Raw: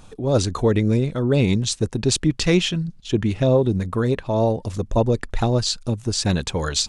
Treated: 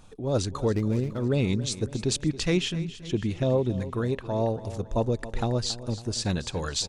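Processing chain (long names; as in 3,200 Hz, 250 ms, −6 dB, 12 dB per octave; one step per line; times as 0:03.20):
0:00.72–0:01.18: running median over 15 samples
repeating echo 277 ms, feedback 50%, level −15 dB
level −7 dB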